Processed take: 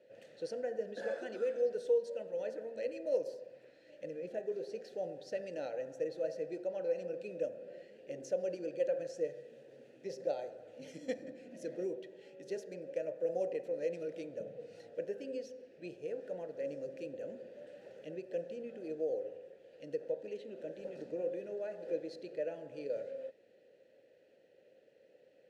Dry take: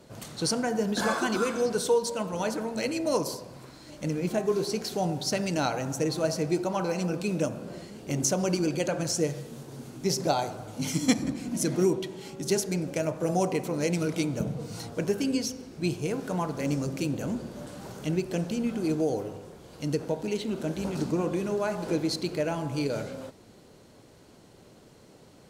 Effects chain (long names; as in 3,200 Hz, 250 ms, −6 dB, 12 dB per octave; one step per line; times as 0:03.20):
dynamic equaliser 2,500 Hz, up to −7 dB, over −51 dBFS, Q 1.3
formant filter e